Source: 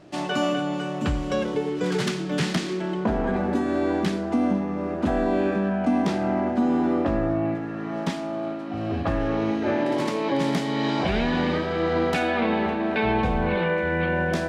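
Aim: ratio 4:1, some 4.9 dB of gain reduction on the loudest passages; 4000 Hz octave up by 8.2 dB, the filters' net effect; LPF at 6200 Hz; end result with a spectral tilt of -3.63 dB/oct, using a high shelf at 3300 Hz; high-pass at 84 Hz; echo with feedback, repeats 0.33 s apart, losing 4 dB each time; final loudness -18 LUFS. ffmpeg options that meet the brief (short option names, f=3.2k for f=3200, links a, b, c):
-af "highpass=84,lowpass=6.2k,highshelf=f=3.3k:g=5.5,equalizer=f=4k:t=o:g=7.5,acompressor=threshold=-24dB:ratio=4,aecho=1:1:330|660|990|1320|1650|1980|2310|2640|2970:0.631|0.398|0.25|0.158|0.0994|0.0626|0.0394|0.0249|0.0157,volume=7.5dB"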